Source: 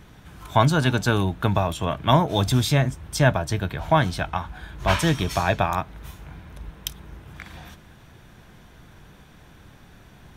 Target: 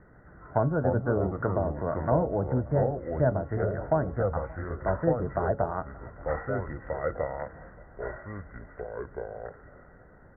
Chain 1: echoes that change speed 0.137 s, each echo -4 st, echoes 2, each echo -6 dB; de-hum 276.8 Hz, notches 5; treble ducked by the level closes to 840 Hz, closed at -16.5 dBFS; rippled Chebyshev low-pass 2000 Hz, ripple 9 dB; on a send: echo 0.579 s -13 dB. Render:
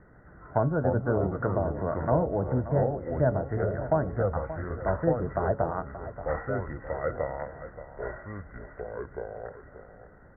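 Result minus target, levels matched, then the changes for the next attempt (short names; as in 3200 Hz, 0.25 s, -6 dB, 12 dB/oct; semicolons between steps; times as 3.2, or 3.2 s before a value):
echo-to-direct +11.5 dB
change: echo 0.579 s -24.5 dB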